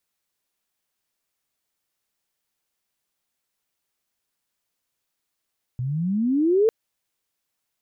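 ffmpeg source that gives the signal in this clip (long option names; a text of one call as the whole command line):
ffmpeg -f lavfi -i "aevalsrc='pow(10,(-24+10*t/0.9)/20)*sin(2*PI*120*0.9/log(460/120)*(exp(log(460/120)*t/0.9)-1))':duration=0.9:sample_rate=44100" out.wav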